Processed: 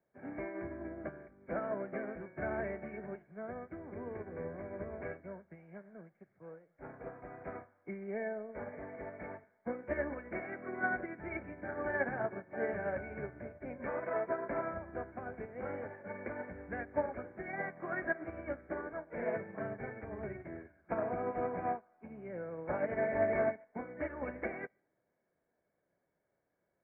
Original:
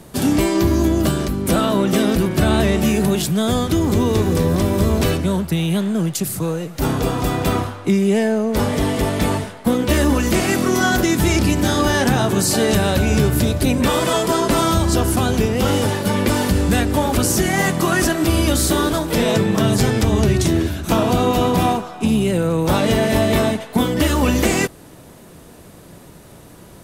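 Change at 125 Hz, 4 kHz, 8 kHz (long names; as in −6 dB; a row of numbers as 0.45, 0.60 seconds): −31.0 dB, below −40 dB, below −40 dB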